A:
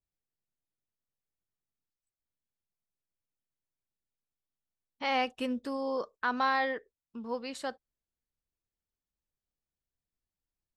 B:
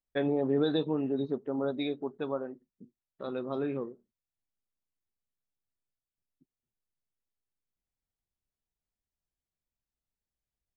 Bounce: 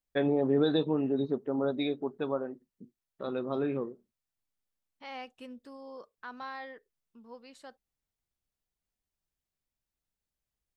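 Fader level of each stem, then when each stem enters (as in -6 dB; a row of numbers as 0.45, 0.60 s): -13.0, +1.5 dB; 0.00, 0.00 s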